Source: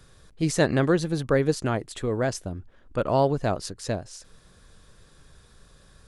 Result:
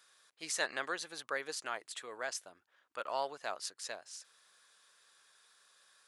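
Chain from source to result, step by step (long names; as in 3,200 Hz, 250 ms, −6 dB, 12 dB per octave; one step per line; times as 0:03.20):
high-pass filter 1,100 Hz 12 dB per octave
level −5 dB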